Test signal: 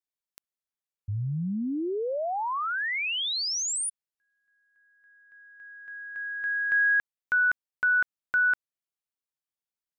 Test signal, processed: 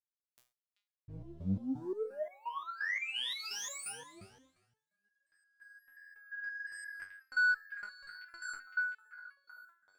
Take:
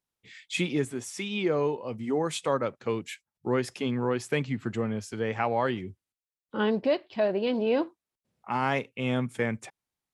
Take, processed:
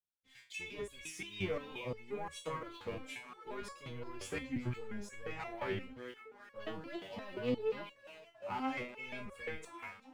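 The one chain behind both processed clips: octaver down 1 oct, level -6 dB; low shelf 81 Hz +6.5 dB; on a send: delay with a stepping band-pass 0.385 s, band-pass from 2900 Hz, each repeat -0.7 oct, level -7 dB; on the sum: sample leveller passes 2; dynamic EQ 2300 Hz, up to +6 dB, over -36 dBFS, Q 1.7; two-slope reverb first 0.56 s, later 2 s, from -24 dB, DRR 14.5 dB; compressor 3:1, threshold -20 dBFS; flange 1.3 Hz, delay 1.5 ms, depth 4.8 ms, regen -82%; stepped resonator 5.7 Hz 96–560 Hz

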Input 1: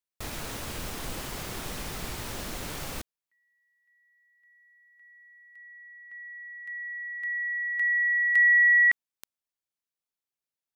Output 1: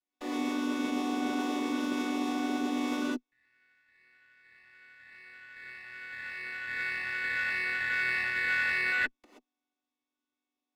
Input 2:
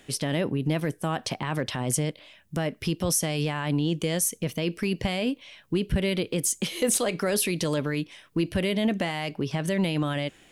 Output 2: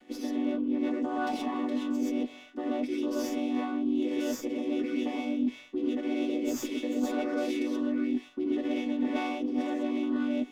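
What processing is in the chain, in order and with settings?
chord vocoder minor triad, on B3; non-linear reverb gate 0.15 s rising, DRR -7 dB; reverse; compressor 5:1, threshold -28 dBFS; reverse; running maximum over 3 samples

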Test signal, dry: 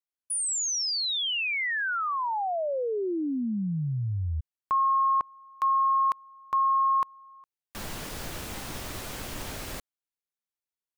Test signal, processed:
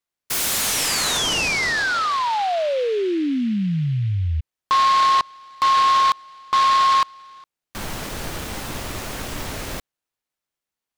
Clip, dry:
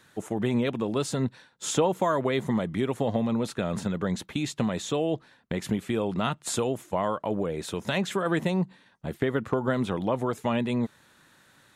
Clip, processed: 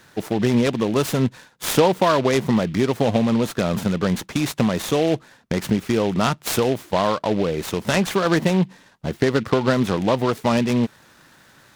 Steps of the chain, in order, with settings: noise-modulated delay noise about 2500 Hz, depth 0.042 ms; gain +7.5 dB

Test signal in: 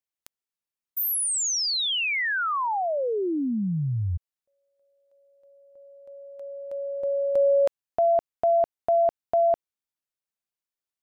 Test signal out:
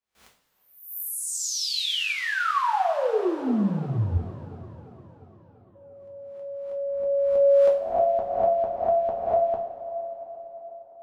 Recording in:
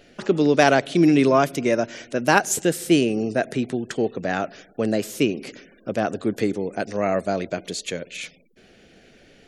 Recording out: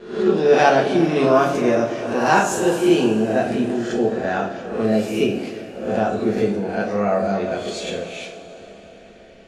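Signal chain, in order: spectral swells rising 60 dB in 0.61 s; gate with hold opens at -47 dBFS, hold 0.373 s, range -18 dB; LPF 2800 Hz 6 dB/oct; dynamic EQ 2100 Hz, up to -6 dB, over -43 dBFS, Q 3.5; on a send: band-limited delay 0.345 s, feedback 66%, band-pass 580 Hz, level -16.5 dB; on the sum: two-slope reverb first 0.42 s, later 4 s, from -18 dB, DRR -2.5 dB; gain -2.5 dB

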